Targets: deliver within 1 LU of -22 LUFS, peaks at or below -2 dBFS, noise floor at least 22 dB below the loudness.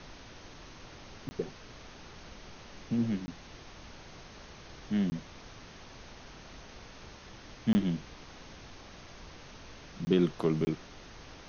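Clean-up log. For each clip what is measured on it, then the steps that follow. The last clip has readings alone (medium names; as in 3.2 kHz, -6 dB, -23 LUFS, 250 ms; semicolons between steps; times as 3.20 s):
dropouts 6; longest dropout 20 ms; noise floor -51 dBFS; noise floor target -55 dBFS; loudness -32.5 LUFS; peak level -14.0 dBFS; loudness target -22.0 LUFS
-> interpolate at 1.29/3.26/5.10/7.73/10.05/10.65 s, 20 ms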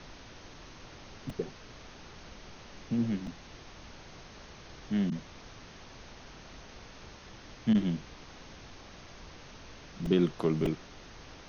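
dropouts 0; noise floor -51 dBFS; noise floor target -54 dBFS
-> noise print and reduce 6 dB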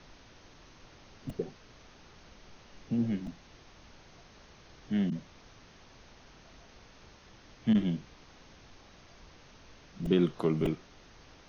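noise floor -57 dBFS; loudness -32.5 LUFS; peak level -14.0 dBFS; loudness target -22.0 LUFS
-> trim +10.5 dB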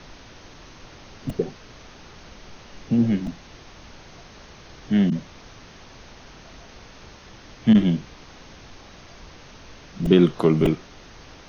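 loudness -22.0 LUFS; peak level -3.5 dBFS; noise floor -46 dBFS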